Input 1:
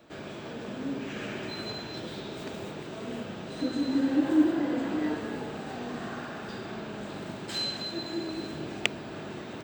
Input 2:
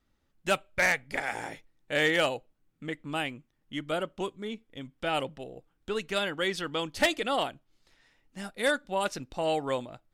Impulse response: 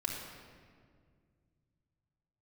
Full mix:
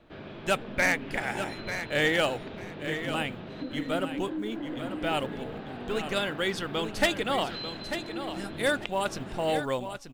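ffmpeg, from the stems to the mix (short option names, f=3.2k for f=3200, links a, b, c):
-filter_complex "[0:a]lowpass=f=4k:w=0.5412,lowpass=f=4k:w=1.3066,acompressor=threshold=-30dB:ratio=6,volume=-3dB[a];[1:a]acrusher=bits=8:mode=log:mix=0:aa=0.000001,volume=0dB,asplit=2[b][c];[c]volume=-9.5dB,aecho=0:1:893|1786|2679:1|0.21|0.0441[d];[a][b][d]amix=inputs=3:normalize=0,lowshelf=f=79:g=10"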